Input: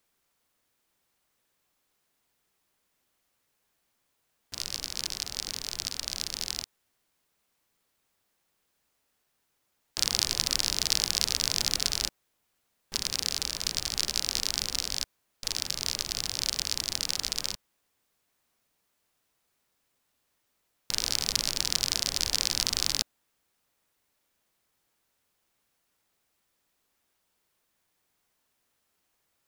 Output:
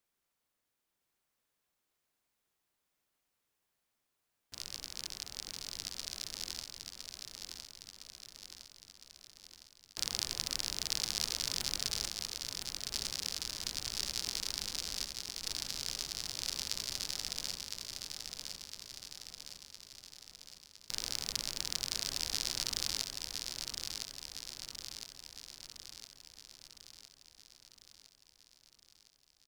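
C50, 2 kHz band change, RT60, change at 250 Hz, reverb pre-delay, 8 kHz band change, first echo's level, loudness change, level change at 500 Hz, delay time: none, -7.5 dB, none, -7.5 dB, none, -7.5 dB, -5.0 dB, -9.0 dB, -7.5 dB, 1.01 s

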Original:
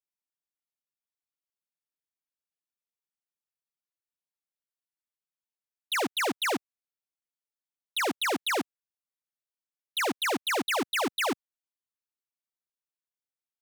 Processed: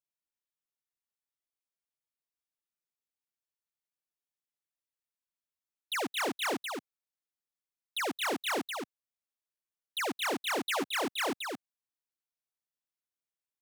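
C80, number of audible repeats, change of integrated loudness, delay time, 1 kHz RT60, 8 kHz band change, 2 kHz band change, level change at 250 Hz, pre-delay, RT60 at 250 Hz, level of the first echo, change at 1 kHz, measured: none, 1, -4.5 dB, 0.223 s, none, -4.0 dB, -4.0 dB, -4.0 dB, none, none, -5.0 dB, -4.0 dB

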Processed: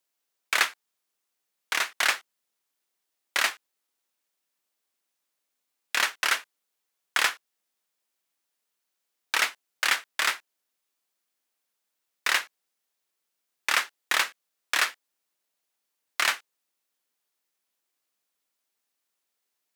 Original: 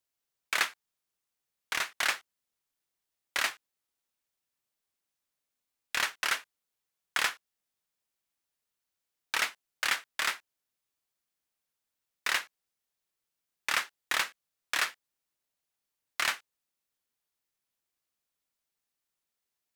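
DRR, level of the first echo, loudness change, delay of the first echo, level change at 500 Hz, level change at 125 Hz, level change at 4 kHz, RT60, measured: none, none, +5.0 dB, none, +5.0 dB, n/a, +5.0 dB, none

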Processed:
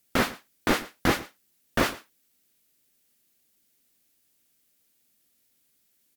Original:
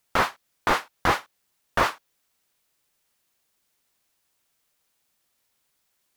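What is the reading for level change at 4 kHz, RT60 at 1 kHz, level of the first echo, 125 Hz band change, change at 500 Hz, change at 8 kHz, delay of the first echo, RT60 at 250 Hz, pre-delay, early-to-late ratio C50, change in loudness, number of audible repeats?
+0.5 dB, none, -18.5 dB, +2.0 dB, 0.0 dB, +2.5 dB, 0.115 s, none, none, none, -2.0 dB, 1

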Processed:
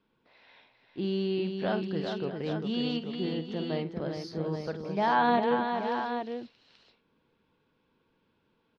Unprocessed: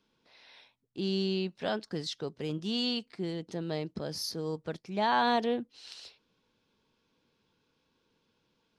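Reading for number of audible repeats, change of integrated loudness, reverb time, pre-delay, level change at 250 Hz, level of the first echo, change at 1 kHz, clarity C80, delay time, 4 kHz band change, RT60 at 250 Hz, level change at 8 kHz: 4, +2.0 dB, none, none, +3.0 dB, -11.5 dB, +3.5 dB, none, 50 ms, -4.0 dB, none, under -10 dB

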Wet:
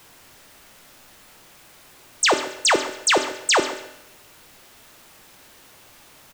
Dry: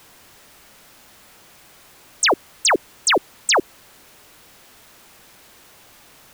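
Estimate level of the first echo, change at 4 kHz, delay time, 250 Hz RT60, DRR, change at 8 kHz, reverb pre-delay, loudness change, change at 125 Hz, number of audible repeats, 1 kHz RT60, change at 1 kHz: -17.0 dB, -0.5 dB, 0.138 s, 0.85 s, 6.0 dB, -0.5 dB, 3 ms, -1.0 dB, -0.5 dB, 1, 0.80 s, -0.5 dB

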